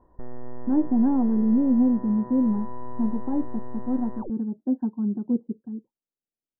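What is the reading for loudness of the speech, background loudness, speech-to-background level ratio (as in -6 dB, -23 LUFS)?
-24.5 LUFS, -41.5 LUFS, 17.0 dB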